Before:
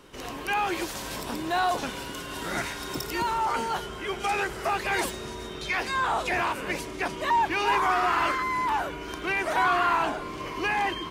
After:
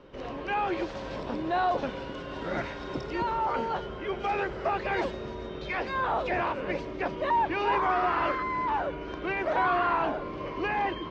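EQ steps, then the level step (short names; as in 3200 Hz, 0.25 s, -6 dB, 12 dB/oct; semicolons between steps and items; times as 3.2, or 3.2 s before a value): Bessel low-pass 3400 Hz, order 6; tilt shelf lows +3 dB; bell 550 Hz +8 dB 0.32 oct; -2.5 dB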